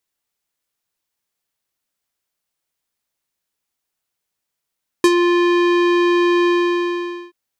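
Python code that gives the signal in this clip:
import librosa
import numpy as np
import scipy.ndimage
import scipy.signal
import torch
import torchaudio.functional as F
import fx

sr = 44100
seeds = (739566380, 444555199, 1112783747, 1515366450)

y = fx.sub_voice(sr, note=65, wave='square', cutoff_hz=3000.0, q=1.0, env_oct=2.0, env_s=0.11, attack_ms=2.4, decay_s=0.05, sustain_db=-6.5, release_s=0.85, note_s=1.43, slope=12)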